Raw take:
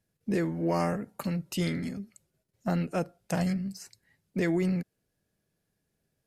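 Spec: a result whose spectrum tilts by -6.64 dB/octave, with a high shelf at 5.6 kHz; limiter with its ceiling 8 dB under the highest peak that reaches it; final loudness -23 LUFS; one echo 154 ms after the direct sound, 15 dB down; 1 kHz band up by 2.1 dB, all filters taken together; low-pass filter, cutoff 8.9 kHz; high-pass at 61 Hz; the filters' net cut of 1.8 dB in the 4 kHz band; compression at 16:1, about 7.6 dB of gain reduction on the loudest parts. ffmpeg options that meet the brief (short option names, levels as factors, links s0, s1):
-af "highpass=61,lowpass=8900,equalizer=f=1000:t=o:g=3,equalizer=f=4000:t=o:g=-4.5,highshelf=f=5600:g=4.5,acompressor=threshold=0.0316:ratio=16,alimiter=level_in=1.33:limit=0.0631:level=0:latency=1,volume=0.75,aecho=1:1:154:0.178,volume=5.62"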